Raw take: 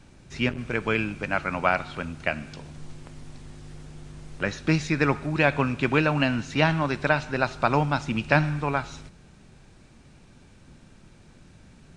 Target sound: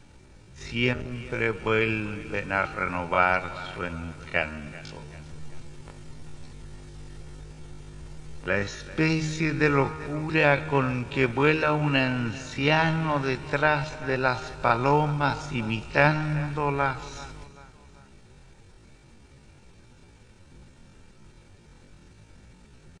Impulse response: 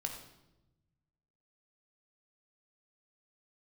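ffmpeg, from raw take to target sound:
-filter_complex "[0:a]aecho=1:1:2.2:0.31,bandreject=frequency=155.9:width_type=h:width=4,bandreject=frequency=311.8:width_type=h:width=4,bandreject=frequency=467.7:width_type=h:width=4,bandreject=frequency=623.6:width_type=h:width=4,bandreject=frequency=779.5:width_type=h:width=4,bandreject=frequency=935.4:width_type=h:width=4,bandreject=frequency=1091.3:width_type=h:width=4,bandreject=frequency=1247.2:width_type=h:width=4,bandreject=frequency=1403.1:width_type=h:width=4,atempo=0.52,asplit=2[link_01][link_02];[link_02]aecho=0:1:387|774|1161:0.112|0.0494|0.0217[link_03];[link_01][link_03]amix=inputs=2:normalize=0"

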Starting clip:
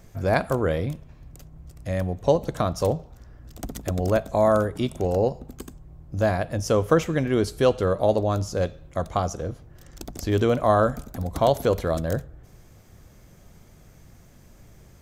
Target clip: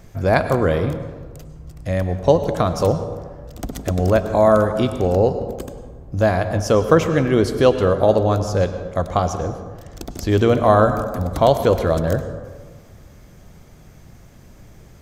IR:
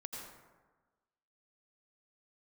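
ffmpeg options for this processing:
-filter_complex "[0:a]asplit=2[link_01][link_02];[1:a]atrim=start_sample=2205,asetrate=37485,aresample=44100,lowpass=6900[link_03];[link_02][link_03]afir=irnorm=-1:irlink=0,volume=-3.5dB[link_04];[link_01][link_04]amix=inputs=2:normalize=0,volume=2.5dB"

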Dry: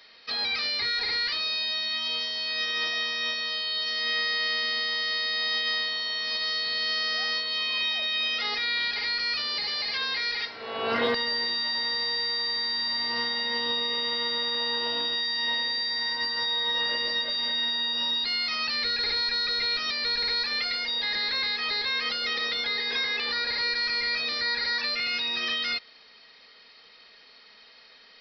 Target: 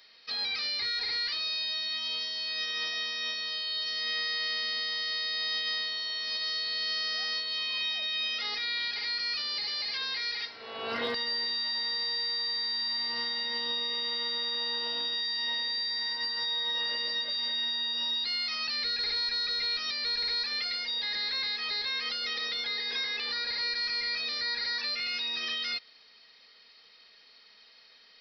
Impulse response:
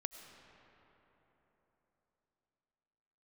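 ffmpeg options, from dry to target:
-af "highshelf=frequency=3800:gain=9,volume=-8dB"

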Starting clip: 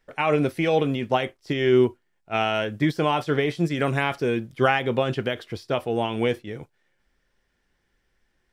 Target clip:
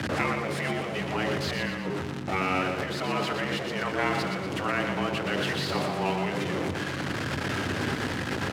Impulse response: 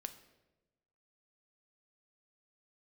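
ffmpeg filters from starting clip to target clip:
-af "aeval=exprs='val(0)+0.5*0.0668*sgn(val(0))':channel_layout=same,aemphasis=mode=reproduction:type=50fm,aeval=exprs='val(0)+0.0158*(sin(2*PI*60*n/s)+sin(2*PI*2*60*n/s)/2+sin(2*PI*3*60*n/s)/3+sin(2*PI*4*60*n/s)/4+sin(2*PI*5*60*n/s)/5)':channel_layout=same,equalizer=frequency=230:width=1.5:gain=4,acompressor=threshold=-20dB:ratio=5,afreqshift=100,aeval=exprs='0.631*(cos(1*acos(clip(val(0)/0.631,-1,1)))-cos(1*PI/2))+0.0126*(cos(5*acos(clip(val(0)/0.631,-1,1)))-cos(5*PI/2))':channel_layout=same,asetrate=38170,aresample=44100,atempo=1.15535,afftfilt=real='re*lt(hypot(re,im),0.316)':imag='im*lt(hypot(re,im),0.316)':win_size=1024:overlap=0.75,aecho=1:1:120|240|360|480|600|720:0.473|0.241|0.123|0.0628|0.032|0.0163"

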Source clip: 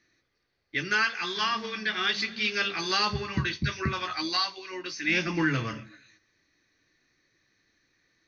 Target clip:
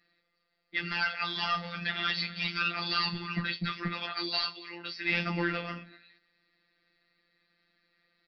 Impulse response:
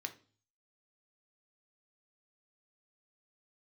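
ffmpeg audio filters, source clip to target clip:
-af "lowshelf=frequency=78:gain=-8,aecho=1:1:4.3:0.96,aresample=11025,asoftclip=type=tanh:threshold=-19.5dB,aresample=44100,afftfilt=real='hypot(re,im)*cos(PI*b)':imag='0':win_size=1024:overlap=0.75"

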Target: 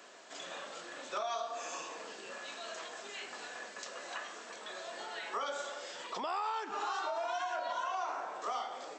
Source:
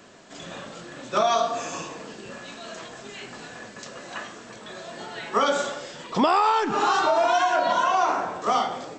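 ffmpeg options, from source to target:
ffmpeg -i in.wav -af "acompressor=threshold=-36dB:ratio=2.5,highpass=490,volume=-3dB" out.wav

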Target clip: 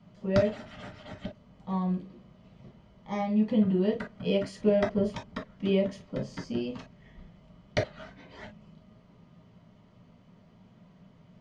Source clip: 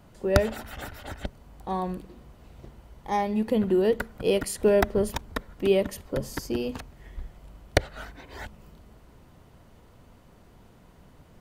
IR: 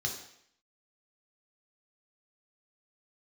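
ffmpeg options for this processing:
-filter_complex "[0:a]lowpass=frequency=5300:width=0.5412,lowpass=frequency=5300:width=1.3066[link_01];[1:a]atrim=start_sample=2205,atrim=end_sample=4410,asetrate=70560,aresample=44100[link_02];[link_01][link_02]afir=irnorm=-1:irlink=0,volume=-4.5dB"

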